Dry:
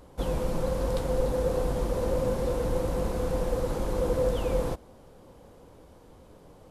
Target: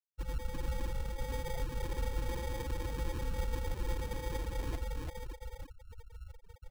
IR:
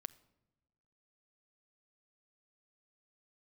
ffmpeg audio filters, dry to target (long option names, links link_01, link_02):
-af "areverse,acompressor=threshold=-39dB:ratio=12,areverse,aecho=1:1:84|276|323|338|568|875:0.316|0.112|0.473|0.631|0.316|0.422,afftfilt=real='re*gte(hypot(re,im),0.0251)':imag='im*gte(hypot(re,im),0.0251)':win_size=1024:overlap=0.75,equalizer=frequency=430:width=2.9:gain=-10.5,aecho=1:1:2.6:0.52,acrusher=samples=32:mix=1:aa=0.000001,volume=5dB"